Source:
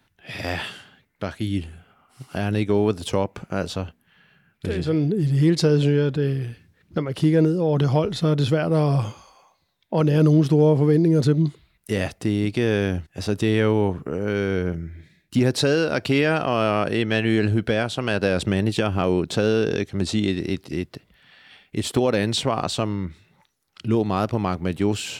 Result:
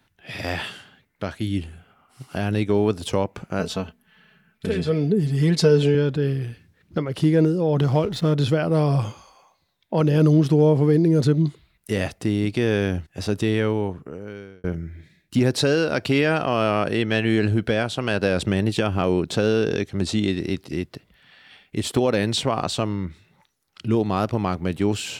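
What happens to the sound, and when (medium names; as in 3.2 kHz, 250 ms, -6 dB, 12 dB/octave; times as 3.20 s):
3.59–5.95 s: comb 4.6 ms
7.78–8.34 s: hysteresis with a dead band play -37 dBFS
13.32–14.64 s: fade out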